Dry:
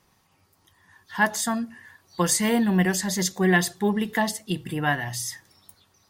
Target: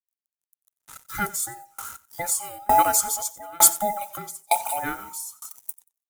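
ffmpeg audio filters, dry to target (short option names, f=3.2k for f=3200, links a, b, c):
-filter_complex "[0:a]afftfilt=real='real(if(between(b,1,1008),(2*floor((b-1)/48)+1)*48-b,b),0)':imag='imag(if(between(b,1,1008),(2*floor((b-1)/48)+1)*48-b,b),0)*if(between(b,1,1008),-1,1)':win_size=2048:overlap=0.75,equalizer=f=1.2k:w=0.85:g=2,asplit=2[a][b];[b]acompressor=threshold=-27dB:ratio=20,volume=-0.5dB[c];[a][c]amix=inputs=2:normalize=0,acrusher=bits=6:mix=0:aa=0.5,aecho=1:1:91|182:0.141|0.0367,aexciter=amount=3.7:drive=8.7:freq=6.1k,aeval=exprs='val(0)*pow(10,-30*if(lt(mod(1.1*n/s,1),2*abs(1.1)/1000),1-mod(1.1*n/s,1)/(2*abs(1.1)/1000),(mod(1.1*n/s,1)-2*abs(1.1)/1000)/(1-2*abs(1.1)/1000))/20)':c=same,volume=2.5dB"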